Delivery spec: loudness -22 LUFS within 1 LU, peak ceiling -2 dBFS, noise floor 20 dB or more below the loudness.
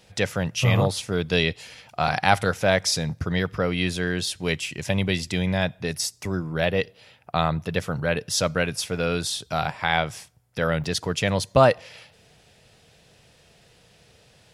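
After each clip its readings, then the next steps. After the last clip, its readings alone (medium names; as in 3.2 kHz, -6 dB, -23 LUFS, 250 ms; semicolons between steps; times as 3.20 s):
dropouts 1; longest dropout 6.4 ms; loudness -24.5 LUFS; peak level -2.0 dBFS; loudness target -22.0 LUFS
-> interpolate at 10.84 s, 6.4 ms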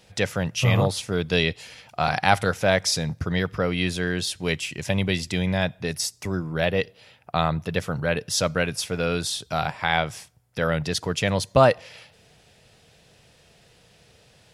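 dropouts 0; loudness -24.5 LUFS; peak level -2.0 dBFS; loudness target -22.0 LUFS
-> trim +2.5 dB; peak limiter -2 dBFS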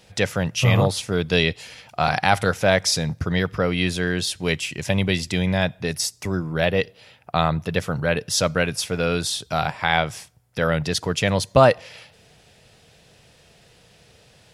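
loudness -22.0 LUFS; peak level -2.0 dBFS; noise floor -55 dBFS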